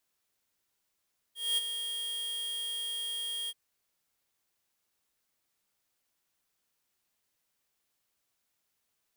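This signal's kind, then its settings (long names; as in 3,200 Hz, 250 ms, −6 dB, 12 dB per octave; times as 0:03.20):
note with an ADSR envelope square 3,250 Hz, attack 224 ms, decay 23 ms, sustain −8.5 dB, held 2.14 s, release 42 ms −27.5 dBFS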